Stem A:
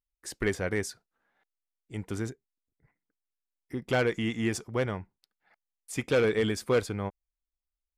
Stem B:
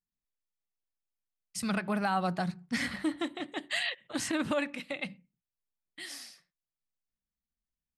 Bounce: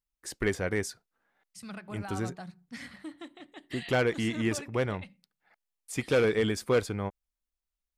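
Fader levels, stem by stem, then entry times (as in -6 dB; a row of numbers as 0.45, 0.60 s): 0.0, -11.0 dB; 0.00, 0.00 s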